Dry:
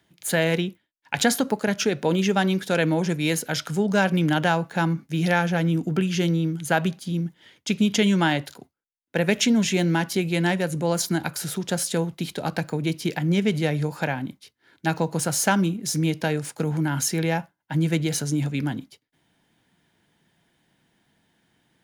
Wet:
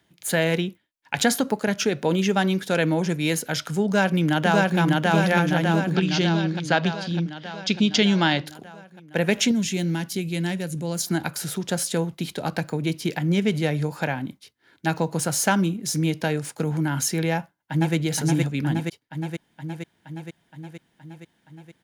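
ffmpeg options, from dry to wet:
ffmpeg -i in.wav -filter_complex "[0:a]asplit=2[link_01][link_02];[link_02]afade=type=in:start_time=3.85:duration=0.01,afade=type=out:start_time=4.79:duration=0.01,aecho=0:1:600|1200|1800|2400|3000|3600|4200|4800|5400|6000|6600:0.944061|0.61364|0.398866|0.259263|0.168521|0.109538|0.0712|0.04628|0.030082|0.0195533|0.0127096[link_03];[link_01][link_03]amix=inputs=2:normalize=0,asettb=1/sr,asplit=3[link_04][link_05][link_06];[link_04]atrim=end=5.954[link_07];[link_05]atrim=start=5.95:end=8.47,asetpts=PTS-STARTPTS,afade=type=in:duration=0.004:curve=qsin,afade=type=out:start_time=2.516:duration=0.004:curve=qsin,lowpass=frequency=4700:width_type=q:width=2.6[link_08];[link_06]atrim=start=8.466[link_09];[link_07][link_08]acrossfade=duration=0.004:curve1=hsin:curve2=qsin[link_10];[link_10][link_09]acrossfade=duration=0.004:curve1=qsin:curve2=hsin,asettb=1/sr,asplit=3[link_11][link_12][link_13];[link_11]atrim=end=9.514[link_14];[link_12]atrim=start=9.51:end=11.07,asetpts=PTS-STARTPTS,afade=type=in:duration=0.004:curve=qsin,afade=type=out:start_time=1.556:duration=0.004:curve=qsin,equalizer=frequency=930:width_type=o:width=2.9:gain=-10[link_15];[link_13]atrim=start=11.066[link_16];[link_14][link_15]acrossfade=duration=0.004:curve1=hsin:curve2=qsin[link_17];[link_17][link_16]acrossfade=duration=0.004:curve1=qsin:curve2=hsin,asplit=2[link_18][link_19];[link_19]afade=type=in:start_time=17.34:duration=0.01,afade=type=out:start_time=17.95:duration=0.01,aecho=0:1:470|940|1410|1880|2350|2820|3290|3760|4230|4700|5170|5640:0.841395|0.588977|0.412284|0.288599|0.202019|0.141413|0.0989893|0.0692925|0.0485048|0.0339533|0.0237673|0.0166371[link_20];[link_18][link_20]amix=inputs=2:normalize=0" out.wav

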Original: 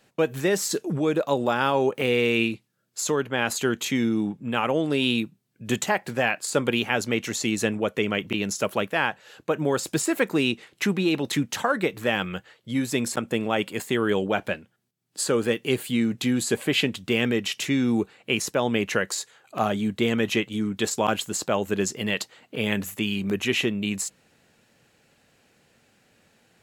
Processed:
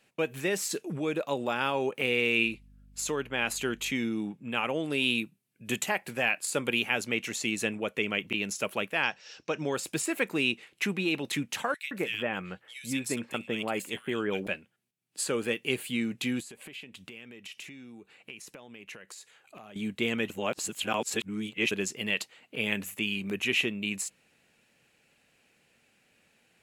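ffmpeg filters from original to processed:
ffmpeg -i in.wav -filter_complex "[0:a]asettb=1/sr,asplit=3[link_01][link_02][link_03];[link_01]atrim=end=2.464[link_04];[link_02]atrim=start=2.46:end=3.92,asetpts=PTS-STARTPTS,afade=type=in:duration=0.004:curve=qsin,afade=type=out:start_time=1.456:duration=0.004:curve=qsin,aeval=exprs='val(0)+0.00501*(sin(2*PI*50*n/s)+sin(2*PI*2*50*n/s)/2+sin(2*PI*3*50*n/s)/3+sin(2*PI*4*50*n/s)/4+sin(2*PI*5*50*n/s)/5)':channel_layout=same[link_05];[link_03]atrim=start=3.916[link_06];[link_04][link_05]acrossfade=duration=0.004:curve1=hsin:curve2=qsin[link_07];[link_07][link_06]acrossfade=duration=0.004:curve1=qsin:curve2=hsin,asettb=1/sr,asplit=3[link_08][link_09][link_10];[link_08]atrim=end=4.804[link_11];[link_09]atrim=start=4.8:end=7.01,asetpts=PTS-STARTPTS,afade=type=in:duration=0.004:curve=qsin,afade=type=out:start_time=2.206:duration=0.004:curve=qsin,equalizer=frequency=12000:width_type=o:width=0.79:gain=5.5[link_12];[link_10]atrim=start=7.006[link_13];[link_11][link_12]acrossfade=duration=0.004:curve1=hsin:curve2=qsin[link_14];[link_14][link_13]acrossfade=duration=0.004:curve1=qsin:curve2=hsin,asettb=1/sr,asplit=3[link_15][link_16][link_17];[link_15]atrim=end=9.034[link_18];[link_16]atrim=start=9.03:end=9.75,asetpts=PTS-STARTPTS,afade=type=in:duration=0.004:curve=qsin,afade=type=out:start_time=0.716:duration=0.004:curve=qsin,lowpass=frequency=5500:width_type=q:width=13[link_19];[link_17]atrim=start=9.746[link_20];[link_18][link_19]acrossfade=duration=0.004:curve1=hsin:curve2=qsin[link_21];[link_21][link_20]acrossfade=duration=0.004:curve1=qsin:curve2=hsin,asettb=1/sr,asplit=3[link_22][link_23][link_24];[link_22]atrim=end=11.744[link_25];[link_23]atrim=start=11.74:end=14.47,asetpts=PTS-STARTPTS,afade=type=in:duration=0.004:curve=qsin,afade=type=out:start_time=2.726:duration=0.004:curve=qsin,acrossover=split=2200[link_26][link_27];[link_26]adelay=170[link_28];[link_28][link_27]amix=inputs=2:normalize=0,atrim=end_sample=120393[link_29];[link_24]atrim=start=14.466[link_30];[link_25][link_29]acrossfade=duration=0.004:curve1=hsin:curve2=qsin[link_31];[link_31][link_30]acrossfade=duration=0.004:curve1=qsin:curve2=hsin,asettb=1/sr,asplit=3[link_32][link_33][link_34];[link_32]atrim=end=16.404[link_35];[link_33]atrim=start=16.4:end=19.76,asetpts=PTS-STARTPTS,afade=type=in:duration=0.004:curve=qsin,afade=type=out:start_time=3.356:duration=0.004:curve=qsin,acompressor=threshold=-37dB:ratio=10:attack=3.2:release=140:knee=1:detection=peak[link_36];[link_34]atrim=start=19.756[link_37];[link_35][link_36]acrossfade=duration=0.004:curve1=hsin:curve2=qsin[link_38];[link_38][link_37]acrossfade=duration=0.004:curve1=qsin:curve2=hsin,asplit=3[link_39][link_40][link_41];[link_39]atrim=end=20.302[link_42];[link_40]atrim=start=20.298:end=21.712,asetpts=PTS-STARTPTS,areverse[link_43];[link_41]atrim=start=21.708[link_44];[link_42][link_43]acrossfade=duration=0.004:curve1=hsin:curve2=hsin[link_45];[link_45][link_44]acrossfade=duration=0.004:curve1=hsin:curve2=hsin,equalizer=frequency=100:width_type=o:width=0.67:gain=-4,equalizer=frequency=2500:width_type=o:width=0.67:gain=8,equalizer=frequency=10000:width_type=o:width=0.67:gain=5,volume=-7.5dB" out.wav

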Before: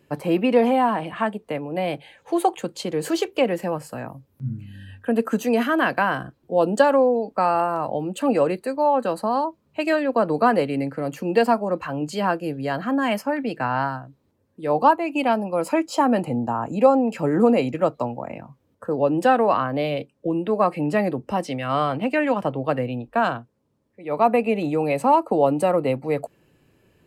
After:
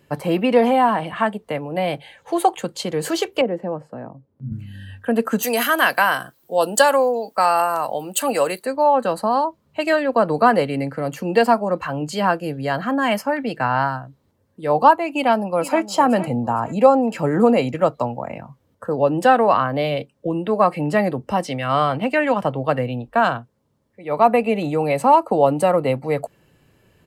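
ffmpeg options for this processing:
ffmpeg -i in.wav -filter_complex "[0:a]asettb=1/sr,asplit=3[link_01][link_02][link_03];[link_01]atrim=end=3.414[link_04];[link_02]atrim=start=3.41:end=4.52,asetpts=PTS-STARTPTS,afade=type=in:duration=0.004:curve=qsin,afade=type=out:start_time=1.106:duration=0.004:curve=qsin,bandpass=frequency=330:width_type=q:width=0.86[link_05];[link_03]atrim=start=4.516[link_06];[link_04][link_05]acrossfade=duration=0.004:curve1=hsin:curve2=qsin[link_07];[link_07][link_06]acrossfade=duration=0.004:curve1=qsin:curve2=hsin,asplit=3[link_08][link_09][link_10];[link_08]afade=type=out:start_time=5.42:duration=0.02[link_11];[link_09]aemphasis=mode=production:type=riaa,afade=type=in:start_time=5.42:duration=0.02,afade=type=out:start_time=8.62:duration=0.02[link_12];[link_10]afade=type=in:start_time=8.62:duration=0.02[link_13];[link_11][link_12][link_13]amix=inputs=3:normalize=0,asplit=2[link_14][link_15];[link_15]afade=type=in:start_time=15.14:duration=0.01,afade=type=out:start_time=15.87:duration=0.01,aecho=0:1:460|920|1380:0.211349|0.0739721|0.0258902[link_16];[link_14][link_16]amix=inputs=2:normalize=0,equalizer=frequency=320:width=1.3:gain=-5,bandreject=frequency=2500:width=16,volume=4.5dB" out.wav

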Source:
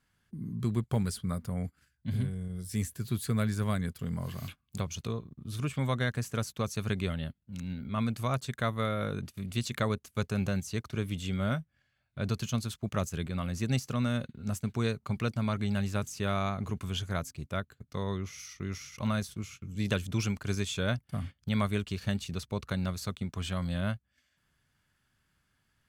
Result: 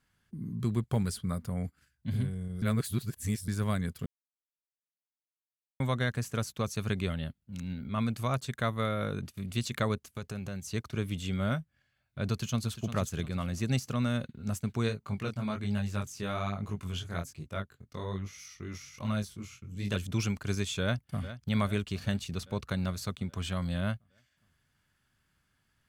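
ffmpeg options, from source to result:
ffmpeg -i in.wav -filter_complex "[0:a]asettb=1/sr,asplit=3[link_01][link_02][link_03];[link_01]atrim=end=10.094[link_04];[link_02]atrim=start=10.09:end=10.66,asetpts=PTS-STARTPTS,afade=type=in:duration=0.004:curve=qsin,afade=type=out:start_time=0.566:duration=0.004:curve=qsin,acompressor=threshold=-35dB:ratio=4:attack=3.2:release=140:knee=1:detection=peak[link_05];[link_03]atrim=start=10.656[link_06];[link_04][link_05]acrossfade=duration=0.004:curve1=hsin:curve2=qsin[link_07];[link_07][link_06]acrossfade=duration=0.004:curve1=qsin:curve2=hsin,asplit=2[link_08][link_09];[link_09]afade=type=in:start_time=12.28:duration=0.01,afade=type=out:start_time=12.85:duration=0.01,aecho=0:1:350|700|1050|1400:0.281838|0.112735|0.0450941|0.0180377[link_10];[link_08][link_10]amix=inputs=2:normalize=0,asplit=3[link_11][link_12][link_13];[link_11]afade=type=out:start_time=14.88:duration=0.02[link_14];[link_12]flanger=delay=19:depth=5.2:speed=1.2,afade=type=in:start_time=14.88:duration=0.02,afade=type=out:start_time=19.95:duration=0.02[link_15];[link_13]afade=type=in:start_time=19.95:duration=0.02[link_16];[link_14][link_15][link_16]amix=inputs=3:normalize=0,asplit=2[link_17][link_18];[link_18]afade=type=in:start_time=20.82:duration=0.01,afade=type=out:start_time=21.36:duration=0.01,aecho=0:1:410|820|1230|1640|2050|2460|2870|3280:0.223872|0.145517|0.094586|0.0614809|0.0399626|0.0259757|0.0168842|0.0109747[link_19];[link_17][link_19]amix=inputs=2:normalize=0,asplit=5[link_20][link_21][link_22][link_23][link_24];[link_20]atrim=end=2.622[link_25];[link_21]atrim=start=2.618:end=3.482,asetpts=PTS-STARTPTS,areverse[link_26];[link_22]atrim=start=3.478:end=4.06,asetpts=PTS-STARTPTS,afade=type=out:start_time=0.578:duration=0.004:curve=hsin[link_27];[link_23]atrim=start=4.06:end=5.8,asetpts=PTS-STARTPTS,volume=0[link_28];[link_24]atrim=start=5.8,asetpts=PTS-STARTPTS,afade=type=in:duration=0.004:curve=hsin[link_29];[link_25][link_26]acrossfade=duration=0.004:curve1=hsin:curve2=hsin[link_30];[link_27][link_28][link_29]concat=n=3:v=0:a=1[link_31];[link_30][link_31]acrossfade=duration=0.004:curve1=hsin:curve2=hsin" out.wav

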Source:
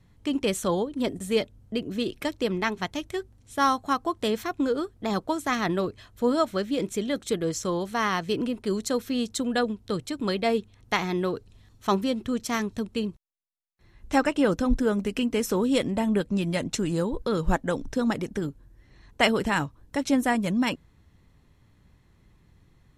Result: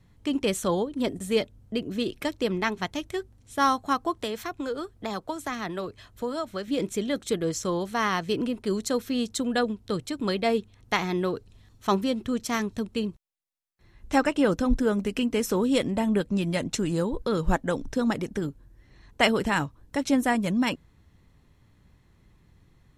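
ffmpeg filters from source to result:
ffmpeg -i in.wav -filter_complex "[0:a]asettb=1/sr,asplit=3[link_01][link_02][link_03];[link_01]atrim=end=4.154[link_04];[link_02]atrim=start=4.15:end=6.68,asetpts=PTS-STARTPTS,afade=type=in:duration=0.004:curve=qsin,afade=type=out:start_time=2.526:duration=0.004:curve=qsin,acrossover=split=160|430[link_05][link_06][link_07];[link_05]acompressor=threshold=-45dB:ratio=4[link_08];[link_06]acompressor=threshold=-40dB:ratio=4[link_09];[link_07]acompressor=threshold=-30dB:ratio=4[link_10];[link_08][link_09][link_10]amix=inputs=3:normalize=0[link_11];[link_03]atrim=start=6.676[link_12];[link_04][link_11]acrossfade=duration=0.004:curve1=hsin:curve2=qsin[link_13];[link_13][link_12]acrossfade=duration=0.004:curve1=qsin:curve2=hsin" out.wav

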